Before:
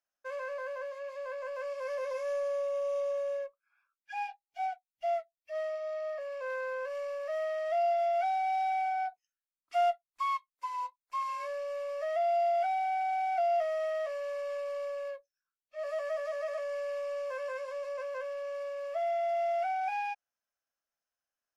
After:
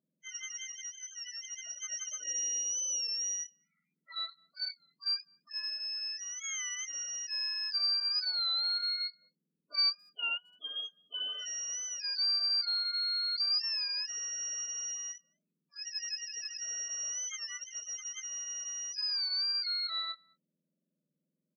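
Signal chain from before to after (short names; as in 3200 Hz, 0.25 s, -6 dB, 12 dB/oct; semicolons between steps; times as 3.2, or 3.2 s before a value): spectrum mirrored in octaves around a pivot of 1800 Hz; 7.46–8.69 notches 60/120/180/240/300/360/420/480/540/600 Hz; loudest bins only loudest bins 16; speakerphone echo 0.21 s, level -27 dB; record warp 33 1/3 rpm, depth 100 cents; gain -1 dB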